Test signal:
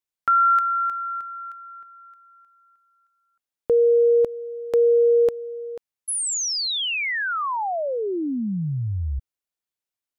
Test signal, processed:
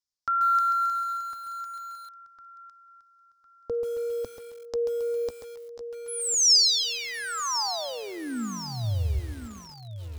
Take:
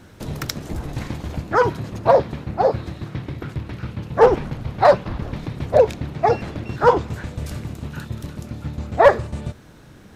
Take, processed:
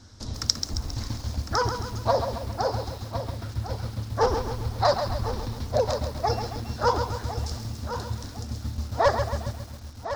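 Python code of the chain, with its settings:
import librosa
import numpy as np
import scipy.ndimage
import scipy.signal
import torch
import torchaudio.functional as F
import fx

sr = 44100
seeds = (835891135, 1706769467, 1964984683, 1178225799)

p1 = fx.curve_eq(x, sr, hz=(110.0, 160.0, 230.0, 370.0, 1100.0, 2600.0, 5200.0, 12000.0), db=(0, -18, -3, -12, -5, -12, 10, -14))
p2 = p1 + fx.echo_feedback(p1, sr, ms=1055, feedback_pct=31, wet_db=-11.0, dry=0)
p3 = fx.echo_crushed(p2, sr, ms=135, feedback_pct=55, bits=7, wet_db=-7.5)
y = F.gain(torch.from_numpy(p3), -1.0).numpy()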